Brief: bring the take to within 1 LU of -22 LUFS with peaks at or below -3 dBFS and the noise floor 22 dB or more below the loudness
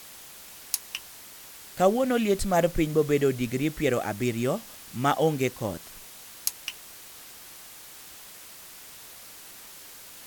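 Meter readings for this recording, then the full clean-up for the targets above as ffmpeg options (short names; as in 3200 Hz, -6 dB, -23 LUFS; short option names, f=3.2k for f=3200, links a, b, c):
noise floor -46 dBFS; noise floor target -49 dBFS; loudness -27.0 LUFS; peak -5.0 dBFS; loudness target -22.0 LUFS
-> -af "afftdn=nr=6:nf=-46"
-af "volume=5dB,alimiter=limit=-3dB:level=0:latency=1"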